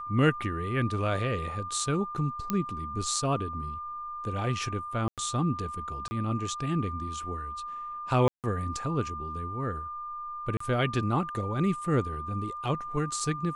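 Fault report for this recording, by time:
tone 1200 Hz -35 dBFS
2.5 pop -13 dBFS
5.08–5.18 gap 97 ms
6.08–6.11 gap 30 ms
8.28–8.44 gap 0.158 s
10.57–10.6 gap 34 ms

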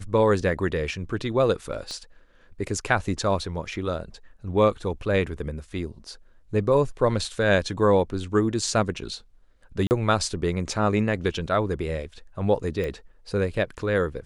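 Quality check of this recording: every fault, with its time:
1.91 pop -22 dBFS
9.87–9.91 gap 39 ms
12.84 pop -19 dBFS

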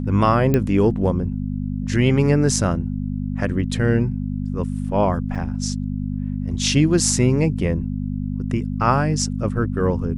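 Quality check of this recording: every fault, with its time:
hum 50 Hz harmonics 5 -25 dBFS
0.54 pop -7 dBFS
5.35–5.36 gap 5.7 ms

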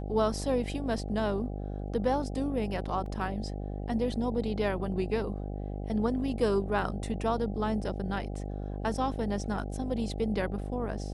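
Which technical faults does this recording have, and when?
buzz 50 Hz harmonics 16 -36 dBFS
3.06 gap 2.5 ms

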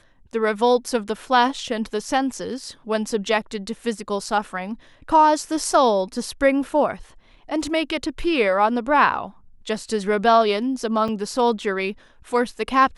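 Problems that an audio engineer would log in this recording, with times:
11.08–11.09 gap 5.4 ms

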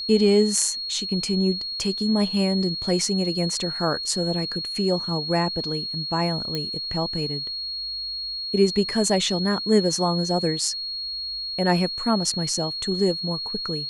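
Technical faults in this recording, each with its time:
tone 4300 Hz -28 dBFS
6.55 pop -13 dBFS

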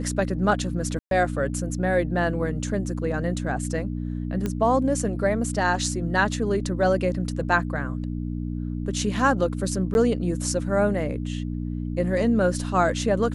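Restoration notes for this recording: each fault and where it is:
hum 60 Hz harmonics 5 -29 dBFS
0.99–1.11 gap 0.122 s
4.46 pop -14 dBFS
9.94–9.95 gap 11 ms

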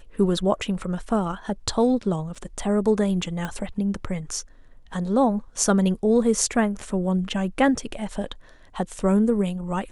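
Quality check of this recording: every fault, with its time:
2.35–2.36 gap 5.8 ms
3.45 pop -16 dBFS

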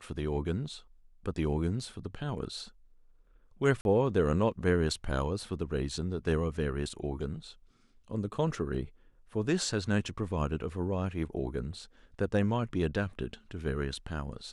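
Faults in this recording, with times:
3.81–3.85 gap 41 ms

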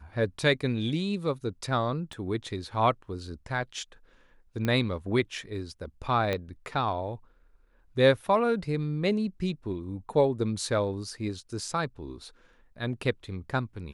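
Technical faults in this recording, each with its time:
2.13 pop -29 dBFS
4.65 pop -16 dBFS
6.33 pop -16 dBFS

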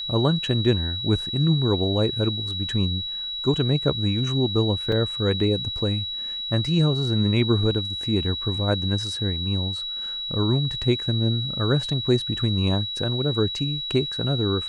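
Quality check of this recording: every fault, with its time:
tone 3900 Hz -28 dBFS
4.92 gap 3.3 ms

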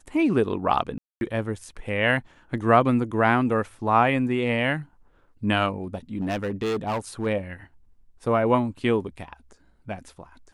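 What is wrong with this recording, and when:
0.98–1.21 gap 0.231 s
5.94–7.27 clipped -22.5 dBFS

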